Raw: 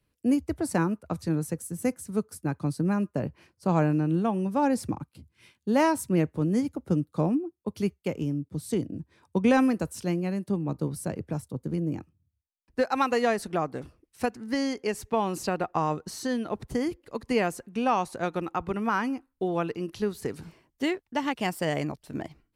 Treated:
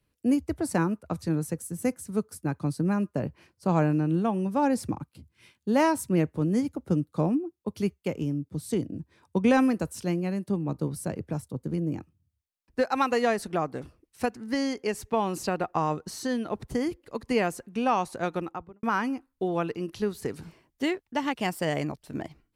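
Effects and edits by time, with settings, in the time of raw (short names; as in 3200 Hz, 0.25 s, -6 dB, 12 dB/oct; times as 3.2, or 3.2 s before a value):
18.33–18.83 studio fade out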